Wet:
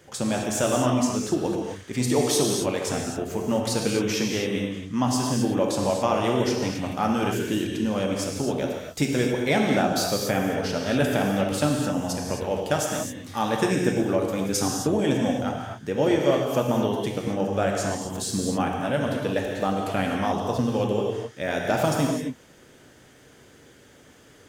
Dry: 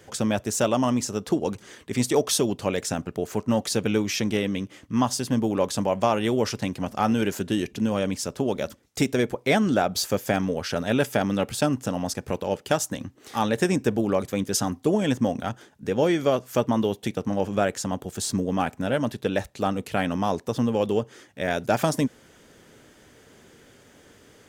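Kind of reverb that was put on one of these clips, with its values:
reverb whose tail is shaped and stops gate 290 ms flat, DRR −0.5 dB
level −2.5 dB

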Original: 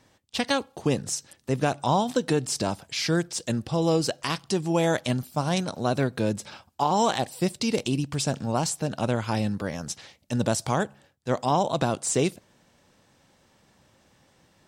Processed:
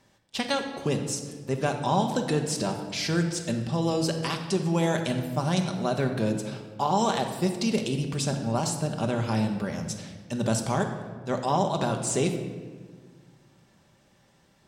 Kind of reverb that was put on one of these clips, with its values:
rectangular room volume 1,700 cubic metres, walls mixed, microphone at 1.2 metres
level −3 dB

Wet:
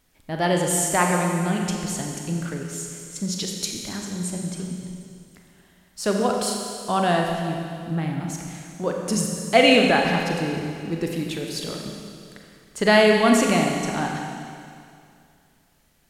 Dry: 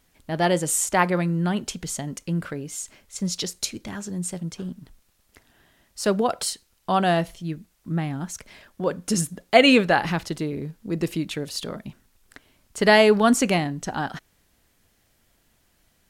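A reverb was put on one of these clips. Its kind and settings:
four-comb reverb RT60 2.4 s, combs from 30 ms, DRR 1 dB
level −1.5 dB

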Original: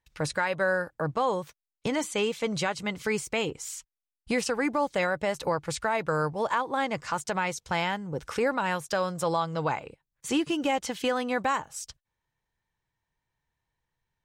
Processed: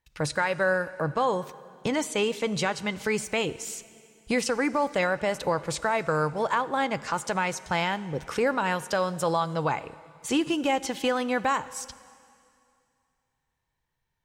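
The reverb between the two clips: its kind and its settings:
dense smooth reverb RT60 2.4 s, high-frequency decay 1×, DRR 16 dB
level +1.5 dB

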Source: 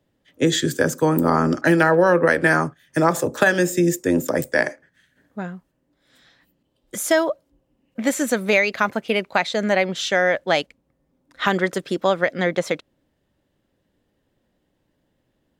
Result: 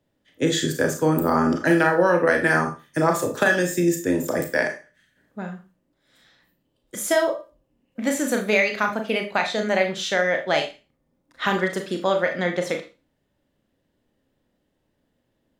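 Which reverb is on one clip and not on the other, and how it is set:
four-comb reverb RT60 0.31 s, combs from 26 ms, DRR 3.5 dB
level −3.5 dB

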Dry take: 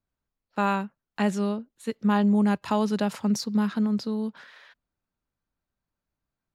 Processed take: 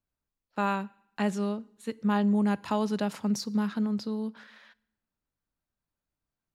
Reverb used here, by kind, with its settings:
feedback delay network reverb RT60 0.77 s, low-frequency decay 1.3×, high-frequency decay 0.95×, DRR 20 dB
level −3.5 dB

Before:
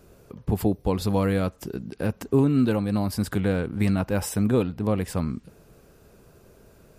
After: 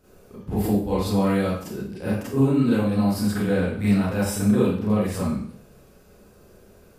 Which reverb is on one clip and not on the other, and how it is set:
four-comb reverb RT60 0.54 s, combs from 30 ms, DRR −9.5 dB
level −8 dB

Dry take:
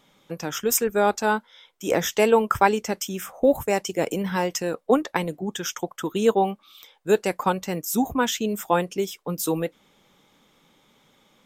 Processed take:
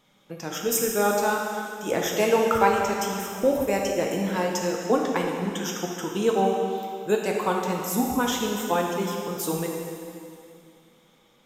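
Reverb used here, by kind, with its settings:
dense smooth reverb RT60 2.5 s, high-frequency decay 0.95×, DRR −0.5 dB
level −4 dB

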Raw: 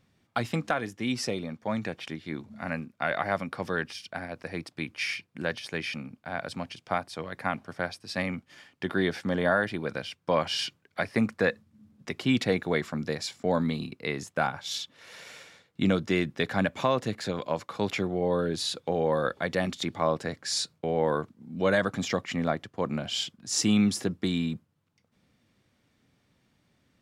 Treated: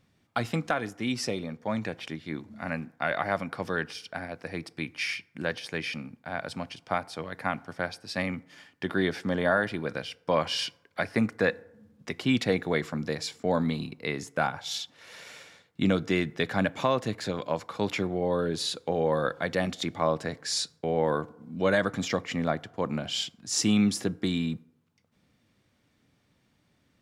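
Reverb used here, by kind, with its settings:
feedback delay network reverb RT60 0.85 s, low-frequency decay 0.8×, high-frequency decay 0.45×, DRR 19.5 dB

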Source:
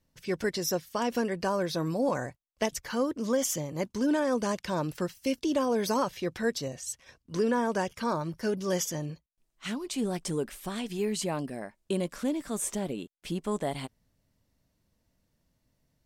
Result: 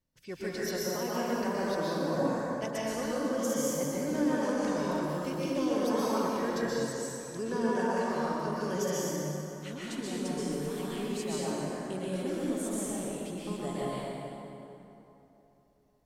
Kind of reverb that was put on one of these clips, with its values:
dense smooth reverb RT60 3.2 s, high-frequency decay 0.6×, pre-delay 110 ms, DRR −8 dB
level −10 dB

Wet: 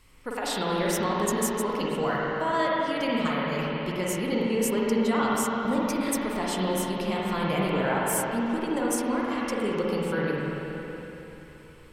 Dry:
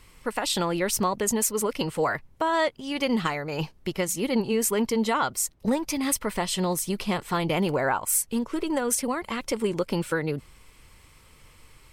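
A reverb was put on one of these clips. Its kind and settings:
spring reverb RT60 3.6 s, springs 43/47/54 ms, chirp 60 ms, DRR −5 dB
level −6 dB

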